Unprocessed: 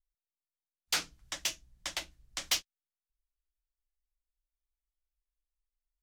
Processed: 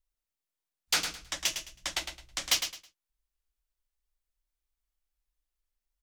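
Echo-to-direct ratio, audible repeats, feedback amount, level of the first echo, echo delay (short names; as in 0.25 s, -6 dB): -7.5 dB, 3, 24%, -8.0 dB, 0.107 s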